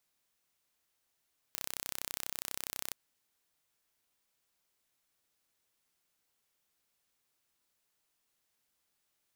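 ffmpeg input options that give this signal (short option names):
-f lavfi -i "aevalsrc='0.316*eq(mod(n,1370),0)':d=1.37:s=44100"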